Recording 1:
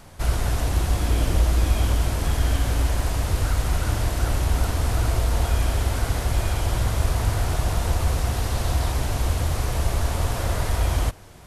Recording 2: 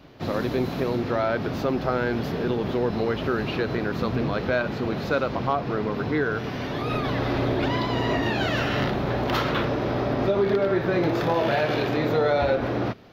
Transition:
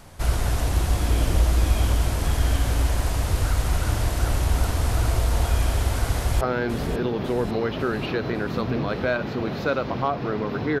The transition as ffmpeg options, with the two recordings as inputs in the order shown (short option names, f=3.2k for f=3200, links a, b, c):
-filter_complex "[0:a]apad=whole_dur=10.8,atrim=end=10.8,atrim=end=6.412[a];[1:a]atrim=start=1.858:end=6.25[b];[a][b]acrossfade=d=0.004:c1=hsin:c2=hsin,asplit=2[c][d];[d]afade=t=in:st=6.14:d=0.01,afade=t=out:st=6.41:d=0.01,aecho=0:1:550|1100|1650|2200|2750|3300:0.354813|0.195147|0.107331|0.0590321|0.0324676|0.0178572[e];[c][e]amix=inputs=2:normalize=0"